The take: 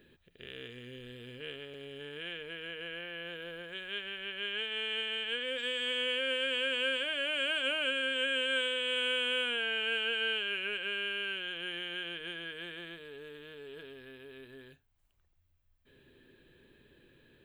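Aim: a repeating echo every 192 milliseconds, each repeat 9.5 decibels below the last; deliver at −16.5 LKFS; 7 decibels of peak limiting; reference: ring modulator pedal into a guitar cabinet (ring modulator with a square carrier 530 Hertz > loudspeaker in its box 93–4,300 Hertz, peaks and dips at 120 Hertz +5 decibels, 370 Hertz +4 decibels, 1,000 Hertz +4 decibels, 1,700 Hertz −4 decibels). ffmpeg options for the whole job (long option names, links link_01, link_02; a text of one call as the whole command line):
ffmpeg -i in.wav -af "alimiter=level_in=3dB:limit=-24dB:level=0:latency=1,volume=-3dB,aecho=1:1:192|384|576|768:0.335|0.111|0.0365|0.012,aeval=exprs='val(0)*sgn(sin(2*PI*530*n/s))':channel_layout=same,highpass=93,equalizer=frequency=120:width_type=q:width=4:gain=5,equalizer=frequency=370:width_type=q:width=4:gain=4,equalizer=frequency=1000:width_type=q:width=4:gain=4,equalizer=frequency=1700:width_type=q:width=4:gain=-4,lowpass=frequency=4300:width=0.5412,lowpass=frequency=4300:width=1.3066,volume=19.5dB" out.wav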